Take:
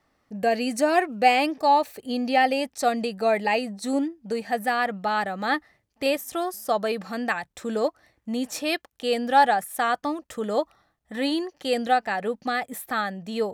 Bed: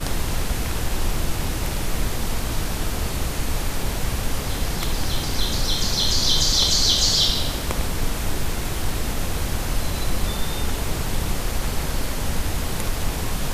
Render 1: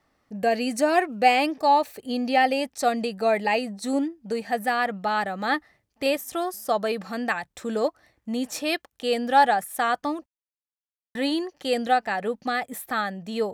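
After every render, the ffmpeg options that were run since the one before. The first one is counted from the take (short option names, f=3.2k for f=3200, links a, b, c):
-filter_complex "[0:a]asplit=3[a][b][c];[a]atrim=end=10.26,asetpts=PTS-STARTPTS,afade=t=out:st=10.256:d=0.004:c=hsin[d];[b]atrim=start=10.26:end=11.15,asetpts=PTS-STARTPTS,volume=0[e];[c]atrim=start=11.15,asetpts=PTS-STARTPTS,afade=t=in:d=0.004:c=hsin[f];[d][e][f]concat=n=3:v=0:a=1"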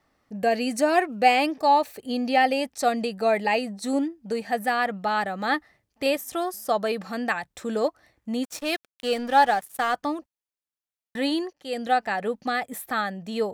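-filter_complex "[0:a]asplit=3[a][b][c];[a]afade=t=out:st=8.42:d=0.02[d];[b]aeval=exprs='sgn(val(0))*max(abs(val(0))-0.0119,0)':c=same,afade=t=in:st=8.42:d=0.02,afade=t=out:st=9.93:d=0.02[e];[c]afade=t=in:st=9.93:d=0.02[f];[d][e][f]amix=inputs=3:normalize=0,asplit=2[g][h];[g]atrim=end=11.53,asetpts=PTS-STARTPTS,afade=t=out:st=11.526:d=0.004:c=hsin:silence=0.133352[i];[h]atrim=start=11.53,asetpts=PTS-STARTPTS,afade=t=in:d=0.46:silence=0.133352[j];[i][j]concat=n=2:v=0:a=1"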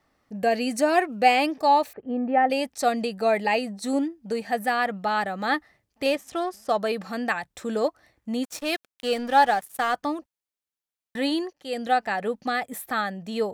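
-filter_complex "[0:a]asettb=1/sr,asplit=3[a][b][c];[a]atrim=end=1.934[d];[b]atrim=start=1.93:end=2.5,asetpts=PTS-STARTPTS,afade=t=in:d=0.004:c=qsin,afade=t=out:st=0.566:d=0.004:c=qsin,lowpass=f=1.7k:w=0.5412,lowpass=f=1.7k:w=1.3066[e];[c]atrim=start=2.496[f];[d][e]acrossfade=d=0.004:c1=hsin:c2=qsin[g];[g][f]acrossfade=d=0.004:c1=qsin:c2=hsin,asettb=1/sr,asplit=3[h][i][j];[h]atrim=end=6.044[k];[i]atrim=start=6.04:end=6.78,asetpts=PTS-STARTPTS,afade=t=in:d=0.004:c=qsin,afade=t=out:st=0.736:d=0.004:c=qsin,adynamicsmooth=sensitivity=7:basefreq=4.6k[l];[j]atrim=start=6.776[m];[k][l]acrossfade=d=0.004:c1=hsin:c2=qsin[n];[n][m]acrossfade=d=0.004:c1=qsin:c2=hsin"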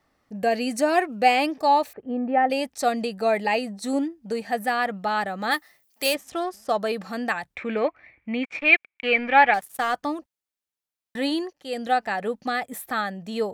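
-filter_complex "[0:a]asplit=3[a][b][c];[a]afade=t=out:st=5.5:d=0.02[d];[b]aemphasis=mode=production:type=riaa,afade=t=in:st=5.5:d=0.02,afade=t=out:st=6.13:d=0.02[e];[c]afade=t=in:st=6.13:d=0.02[f];[d][e][f]amix=inputs=3:normalize=0,asettb=1/sr,asplit=3[g][h][i];[g]atrim=end=7.554[j];[h]atrim=start=7.55:end=9.54,asetpts=PTS-STARTPTS,afade=t=in:d=0.004:c=qsin,afade=t=out:st=1.986:d=0.004:c=qsin,lowpass=f=2.3k:t=q:w=14[k];[i]atrim=start=9.536[l];[j][k]acrossfade=d=0.004:c1=hsin:c2=qsin[m];[m][l]acrossfade=d=0.004:c1=qsin:c2=hsin"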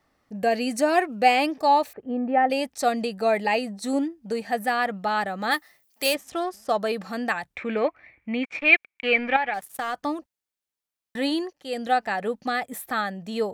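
-filter_complex "[0:a]asettb=1/sr,asplit=3[a][b][c];[a]atrim=end=9.364[d];[b]atrim=start=9.36:end=10.05,asetpts=PTS-STARTPTS,afade=t=in:d=0.004:c=qsin,afade=t=out:st=0.686:d=0.004:c=qsin,acompressor=threshold=-25dB:ratio=3:attack=3.2:release=140:knee=1:detection=peak[e];[c]atrim=start=10.046[f];[d][e]acrossfade=d=0.004:c1=hsin:c2=qsin[g];[g][f]acrossfade=d=0.004:c1=qsin:c2=hsin"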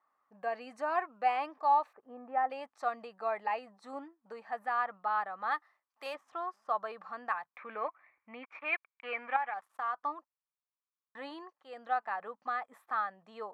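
-af "bandpass=f=1.1k:t=q:w=4:csg=0"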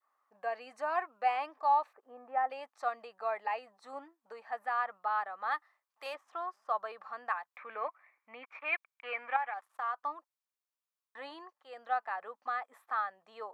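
-af "highpass=420,adynamicequalizer=threshold=0.00891:dfrequency=970:dqfactor=0.97:tfrequency=970:tqfactor=0.97:attack=5:release=100:ratio=0.375:range=1.5:mode=cutabove:tftype=bell"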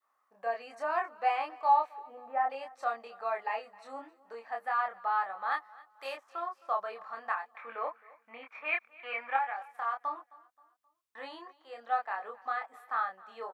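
-filter_complex "[0:a]asplit=2[a][b];[b]adelay=26,volume=-3dB[c];[a][c]amix=inputs=2:normalize=0,aecho=1:1:264|528|792:0.0794|0.0326|0.0134"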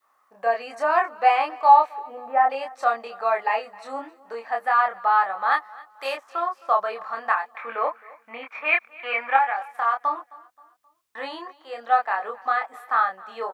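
-af "volume=11dB"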